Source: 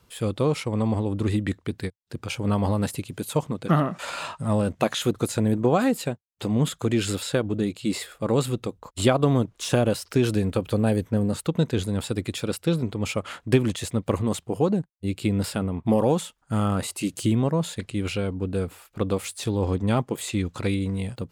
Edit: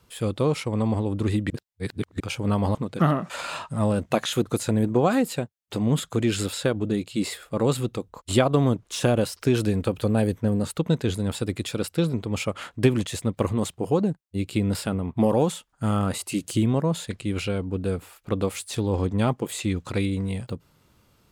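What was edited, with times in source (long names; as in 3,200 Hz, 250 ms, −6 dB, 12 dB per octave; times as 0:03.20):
0:01.50–0:02.20: reverse
0:02.75–0:03.44: remove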